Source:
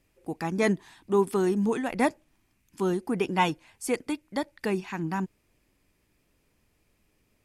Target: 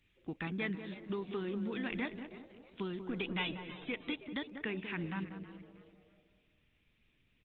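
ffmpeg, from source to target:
-filter_complex "[0:a]asettb=1/sr,asplit=3[s0][s1][s2];[s0]atrim=end=0.654[s3];[s1]atrim=start=0.65:end=1.42,asetpts=PTS-STARTPTS,afade=t=in:d=0.004:c=qsin,afade=t=out:st=0.766:d=0.004:c=qsin,agate=range=0.01:threshold=0.00447:ratio=16:detection=peak[s4];[s2]atrim=start=1.416[s5];[s3][s4]acrossfade=d=0.004:c1=hsin:c2=qsin[s6];[s6][s5]acrossfade=d=0.004:c1=qsin:c2=hsin,equalizer=f=710:t=o:w=1.5:g=-11.5,asplit=3[s7][s8][s9];[s7]afade=t=out:st=4.5:d=0.02[s10];[s8]bandreject=f=50:t=h:w=6,bandreject=f=100:t=h:w=6,bandreject=f=150:t=h:w=6,bandreject=f=200:t=h:w=6,bandreject=f=250:t=h:w=6,afade=t=in:st=4.5:d=0.02,afade=t=out:st=4.94:d=0.02[s11];[s9]afade=t=in:st=4.94:d=0.02[s12];[s10][s11][s12]amix=inputs=3:normalize=0,acompressor=threshold=0.0224:ratio=12,asplit=3[s13][s14][s15];[s13]afade=t=out:st=3.08:d=0.02[s16];[s14]aeval=exprs='0.0501*(cos(1*acos(clip(val(0)/0.0501,-1,1)))-cos(1*PI/2))+0.000562*(cos(2*acos(clip(val(0)/0.0501,-1,1)))-cos(2*PI/2))+0.000708*(cos(3*acos(clip(val(0)/0.0501,-1,1)))-cos(3*PI/2))+0.00398*(cos(6*acos(clip(val(0)/0.0501,-1,1)))-cos(6*PI/2))':c=same,afade=t=in:st=3.08:d=0.02,afade=t=out:st=3.84:d=0.02[s17];[s15]afade=t=in:st=3.84:d=0.02[s18];[s16][s17][s18]amix=inputs=3:normalize=0,crystalizer=i=5.5:c=0,asplit=2[s19][s20];[s20]adelay=190,lowpass=f=980:p=1,volume=0.447,asplit=2[s21][s22];[s22]adelay=190,lowpass=f=980:p=1,volume=0.51,asplit=2[s23][s24];[s24]adelay=190,lowpass=f=980:p=1,volume=0.51,asplit=2[s25][s26];[s26]adelay=190,lowpass=f=980:p=1,volume=0.51,asplit=2[s27][s28];[s28]adelay=190,lowpass=f=980:p=1,volume=0.51,asplit=2[s29][s30];[s30]adelay=190,lowpass=f=980:p=1,volume=0.51[s31];[s21][s23][s25][s27][s29][s31]amix=inputs=6:normalize=0[s32];[s19][s32]amix=inputs=2:normalize=0,aresample=8000,aresample=44100,asplit=2[s33][s34];[s34]asplit=3[s35][s36][s37];[s35]adelay=321,afreqshift=140,volume=0.158[s38];[s36]adelay=642,afreqshift=280,volume=0.0556[s39];[s37]adelay=963,afreqshift=420,volume=0.0195[s40];[s38][s39][s40]amix=inputs=3:normalize=0[s41];[s33][s41]amix=inputs=2:normalize=0,volume=0.75" -ar 48000 -c:a libopus -b:a 16k

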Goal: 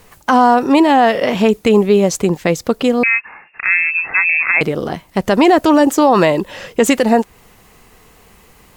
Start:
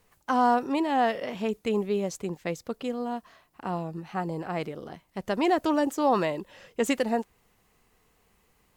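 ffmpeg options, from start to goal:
-filter_complex "[0:a]asettb=1/sr,asplit=3[s0][s1][s2];[s0]atrim=end=3.034[s3];[s1]atrim=start=3.03:end=4.61,asetpts=PTS-STARTPTS,afade=t=in:d=0.004:c=qsin,afade=t=out:st=1.576:d=0.004:c=qsin,lowpass=f=2400:t=q:w=0.5098,lowpass=f=2400:t=q:w=0.6013,lowpass=f=2400:t=q:w=0.9,lowpass=f=2400:t=q:w=2.563,afreqshift=-2800[s4];[s2]atrim=start=4.606[s5];[s3][s4]acrossfade=d=0.004:c1=hsin:c2=qsin[s6];[s6][s5]acrossfade=d=0.004:c1=qsin:c2=hsin,asplit=2[s7][s8];[s8]acompressor=threshold=0.0251:ratio=6,volume=1.12[s9];[s7][s9]amix=inputs=2:normalize=0,alimiter=level_in=5.01:limit=0.891:release=50:level=0:latency=1,volume=0.891"

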